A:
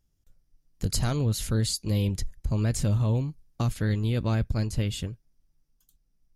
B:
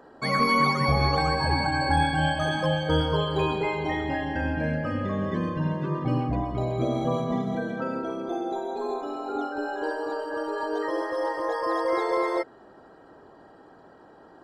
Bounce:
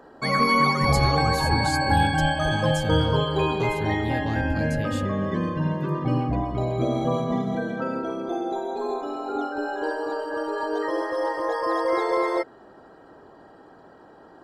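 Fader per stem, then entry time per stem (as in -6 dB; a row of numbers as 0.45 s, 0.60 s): -4.0 dB, +2.0 dB; 0.00 s, 0.00 s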